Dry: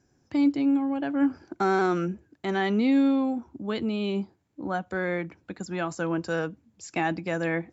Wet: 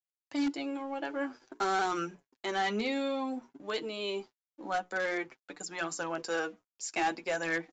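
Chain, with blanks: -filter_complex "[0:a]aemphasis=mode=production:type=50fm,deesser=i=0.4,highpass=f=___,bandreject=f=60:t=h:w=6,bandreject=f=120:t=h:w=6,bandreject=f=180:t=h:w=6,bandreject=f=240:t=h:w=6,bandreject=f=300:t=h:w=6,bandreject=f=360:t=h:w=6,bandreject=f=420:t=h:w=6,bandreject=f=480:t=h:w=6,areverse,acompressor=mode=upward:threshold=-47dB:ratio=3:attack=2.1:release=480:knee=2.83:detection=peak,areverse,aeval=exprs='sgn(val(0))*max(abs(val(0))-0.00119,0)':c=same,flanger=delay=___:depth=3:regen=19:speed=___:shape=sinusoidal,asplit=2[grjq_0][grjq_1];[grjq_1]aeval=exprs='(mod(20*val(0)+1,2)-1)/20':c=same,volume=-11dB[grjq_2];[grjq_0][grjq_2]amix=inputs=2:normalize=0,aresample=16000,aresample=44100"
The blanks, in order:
380, 6.5, 0.52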